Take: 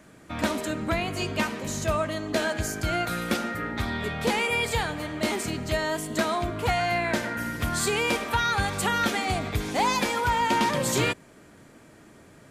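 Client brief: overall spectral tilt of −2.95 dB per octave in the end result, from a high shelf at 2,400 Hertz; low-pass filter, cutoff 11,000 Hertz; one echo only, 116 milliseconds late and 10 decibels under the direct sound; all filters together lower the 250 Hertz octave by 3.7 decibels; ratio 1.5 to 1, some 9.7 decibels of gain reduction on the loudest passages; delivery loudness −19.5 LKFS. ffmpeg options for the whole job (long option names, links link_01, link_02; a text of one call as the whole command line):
ffmpeg -i in.wav -af "lowpass=11000,equalizer=frequency=250:width_type=o:gain=-5,highshelf=frequency=2400:gain=4,acompressor=threshold=-48dB:ratio=1.5,aecho=1:1:116:0.316,volume=15dB" out.wav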